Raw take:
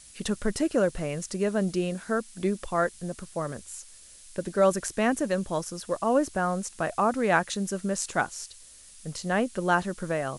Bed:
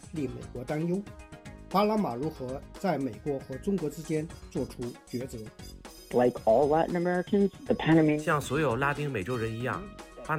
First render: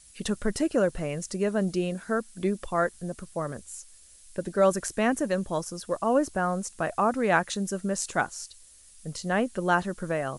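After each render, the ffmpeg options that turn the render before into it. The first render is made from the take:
-af "afftdn=nr=6:nf=-51"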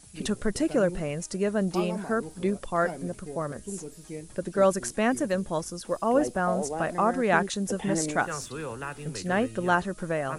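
-filter_complex "[1:a]volume=-8.5dB[a];[0:a][a]amix=inputs=2:normalize=0"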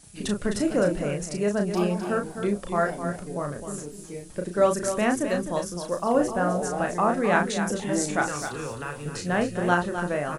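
-filter_complex "[0:a]asplit=2[a][b];[b]adelay=34,volume=-5dB[c];[a][c]amix=inputs=2:normalize=0,aecho=1:1:258:0.355"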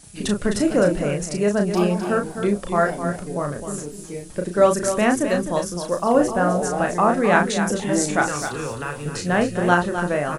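-af "volume=5dB"

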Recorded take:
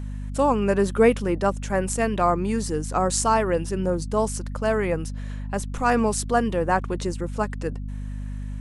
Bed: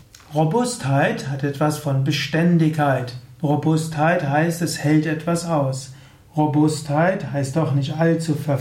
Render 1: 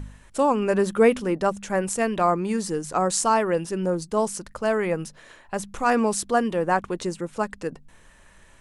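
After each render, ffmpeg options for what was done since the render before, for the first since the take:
-af "bandreject=f=50:t=h:w=4,bandreject=f=100:t=h:w=4,bandreject=f=150:t=h:w=4,bandreject=f=200:t=h:w=4,bandreject=f=250:t=h:w=4"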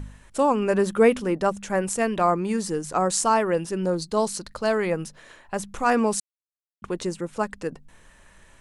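-filter_complex "[0:a]asettb=1/sr,asplit=3[a][b][c];[a]atrim=end=3.854[d];[b]atrim=start=3.85:end=4.9,asetpts=PTS-STARTPTS,afade=t=in:d=0.004:c=qsin,afade=t=out:st=1.046:d=0.004:c=qsin,equalizer=f=4.2k:t=o:w=0.39:g=12[e];[c]atrim=start=4.896[f];[d][e]acrossfade=d=0.004:c1=hsin:c2=qsin[g];[g][f]acrossfade=d=0.004:c1=qsin:c2=hsin,asplit=3[h][i][j];[h]atrim=end=6.2,asetpts=PTS-STARTPTS,afade=t=out:st=6.196:d=0.004:c=hsin[k];[i]atrim=start=6.2:end=6.82,asetpts=PTS-STARTPTS,volume=0[l];[j]atrim=start=6.82,asetpts=PTS-STARTPTS,afade=t=in:d=0.004:c=hsin[m];[k][l][m]concat=n=3:v=0:a=1"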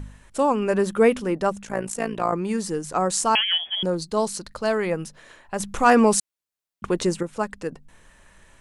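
-filter_complex "[0:a]asettb=1/sr,asplit=3[a][b][c];[a]atrim=end=1.634[d];[b]atrim=start=1.63:end=2.33,asetpts=PTS-STARTPTS,afade=t=in:d=0.004:c=qsin,afade=t=out:st=0.696:d=0.004:c=qsin,tremolo=f=56:d=0.824[e];[c]atrim=start=2.326[f];[d][e]acrossfade=d=0.004:c1=hsin:c2=qsin[g];[g][f]acrossfade=d=0.004:c1=qsin:c2=hsin,asettb=1/sr,asplit=3[h][i][j];[h]atrim=end=3.354[k];[i]atrim=start=3.35:end=3.83,asetpts=PTS-STARTPTS,afade=t=in:d=0.004:c=qsin,afade=t=out:st=0.476:d=0.004:c=qsin,lowpass=f=3k:t=q:w=0.5098,lowpass=f=3k:t=q:w=0.6013,lowpass=f=3k:t=q:w=0.9,lowpass=f=3k:t=q:w=2.563,afreqshift=-3500[l];[j]atrim=start=3.826[m];[k][l]acrossfade=d=0.004:c1=hsin:c2=qsin[n];[n][m]acrossfade=d=0.004:c1=qsin:c2=hsin,asettb=1/sr,asplit=3[o][p][q];[o]atrim=end=5.604[r];[p]atrim=start=5.6:end=7.23,asetpts=PTS-STARTPTS,afade=t=in:d=0.004:c=qsin,afade=t=out:st=1.626:d=0.004:c=qsin,acontrast=48[s];[q]atrim=start=7.226[t];[r][s]acrossfade=d=0.004:c1=hsin:c2=qsin[u];[u][t]acrossfade=d=0.004:c1=qsin:c2=hsin"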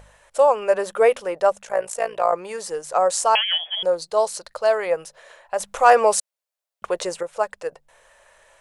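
-af "lowshelf=f=380:t=q:w=3:g=-13.5"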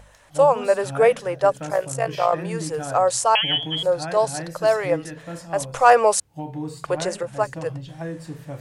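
-filter_complex "[1:a]volume=-14dB[a];[0:a][a]amix=inputs=2:normalize=0"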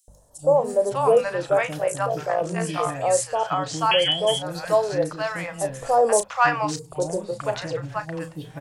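-filter_complex "[0:a]asplit=2[a][b];[b]adelay=34,volume=-11dB[c];[a][c]amix=inputs=2:normalize=0,acrossover=split=810|5700[d][e][f];[d]adelay=80[g];[e]adelay=560[h];[g][h][f]amix=inputs=3:normalize=0"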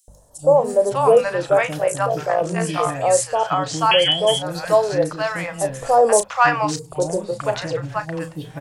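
-af "volume=4dB,alimiter=limit=-2dB:level=0:latency=1"

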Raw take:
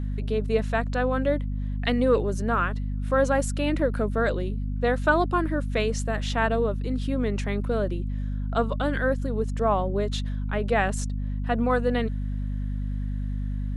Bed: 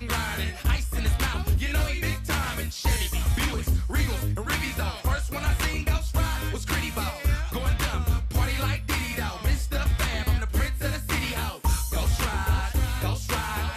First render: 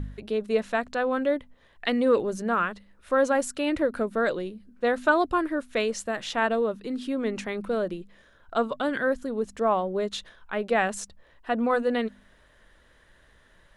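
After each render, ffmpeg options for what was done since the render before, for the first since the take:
-af "bandreject=f=50:t=h:w=4,bandreject=f=100:t=h:w=4,bandreject=f=150:t=h:w=4,bandreject=f=200:t=h:w=4,bandreject=f=250:t=h:w=4"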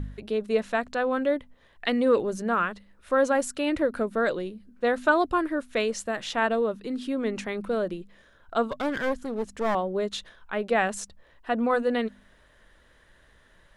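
-filter_complex "[0:a]asettb=1/sr,asplit=3[a][b][c];[a]atrim=end=8.644[d];[b]atrim=start=8.64:end=9.75,asetpts=PTS-STARTPTS,afade=t=in:d=0.004:c=qsin,afade=t=out:st=1.106:d=0.004:c=qsin,aeval=exprs='clip(val(0),-1,0.0299)':c=same[e];[c]atrim=start=9.746[f];[d][e]acrossfade=d=0.004:c1=hsin:c2=qsin[g];[g][f]acrossfade=d=0.004:c1=qsin:c2=hsin"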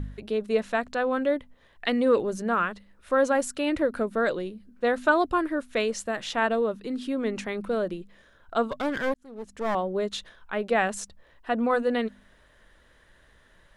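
-filter_complex "[0:a]asplit=2[a][b];[a]atrim=end=9.14,asetpts=PTS-STARTPTS,afade=t=out:st=9.136:d=0.004:c=hsin[c];[b]atrim=start=9.14,asetpts=PTS-STARTPTS,afade=t=in:d=0.67[d];[c][d]concat=n=2:v=0:a=1"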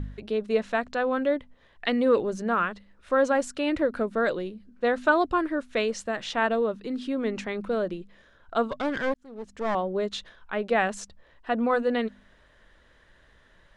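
-af "lowpass=6.8k"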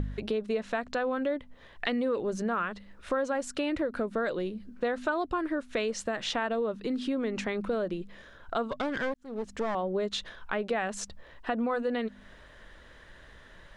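-filter_complex "[0:a]asplit=2[a][b];[b]alimiter=limit=-20.5dB:level=0:latency=1:release=105,volume=0.5dB[c];[a][c]amix=inputs=2:normalize=0,acompressor=threshold=-30dB:ratio=3"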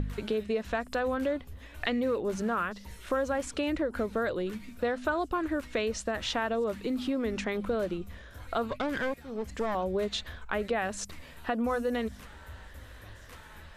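-filter_complex "[1:a]volume=-23.5dB[a];[0:a][a]amix=inputs=2:normalize=0"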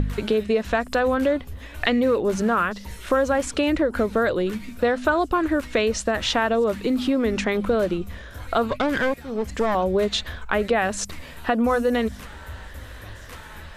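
-af "volume=9dB"

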